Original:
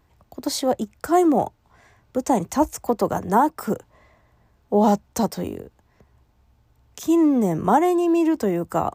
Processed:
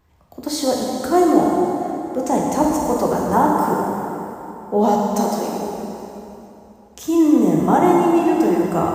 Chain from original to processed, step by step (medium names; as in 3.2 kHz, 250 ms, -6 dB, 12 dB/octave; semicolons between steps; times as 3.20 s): 5.07–5.61 s: high-pass 270 Hz 12 dB/octave; plate-style reverb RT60 3.2 s, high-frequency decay 0.8×, DRR -3 dB; trim -1 dB